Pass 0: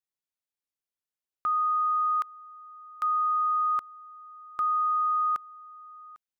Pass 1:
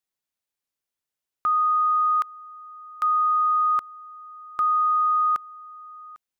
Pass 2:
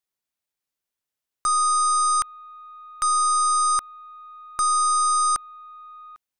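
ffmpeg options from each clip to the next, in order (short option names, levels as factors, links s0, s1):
-af "acontrast=21"
-af "aeval=exprs='0.133*(cos(1*acos(clip(val(0)/0.133,-1,1)))-cos(1*PI/2))+0.0168*(cos(4*acos(clip(val(0)/0.133,-1,1)))-cos(4*PI/2))+0.0299*(cos(5*acos(clip(val(0)/0.133,-1,1)))-cos(5*PI/2))+0.00237*(cos(6*acos(clip(val(0)/0.133,-1,1)))-cos(6*PI/2))+0.0596*(cos(7*acos(clip(val(0)/0.133,-1,1)))-cos(7*PI/2))':c=same"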